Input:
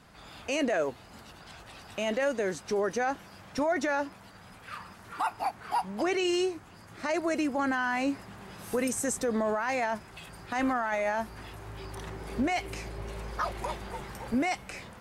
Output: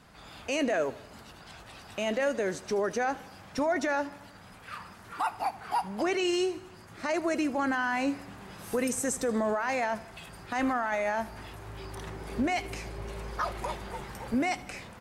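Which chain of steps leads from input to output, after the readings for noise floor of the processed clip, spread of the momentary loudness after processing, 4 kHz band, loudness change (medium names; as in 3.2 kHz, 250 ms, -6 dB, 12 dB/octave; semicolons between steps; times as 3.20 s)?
-51 dBFS, 17 LU, 0.0 dB, 0.0 dB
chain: feedback delay 78 ms, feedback 59%, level -19 dB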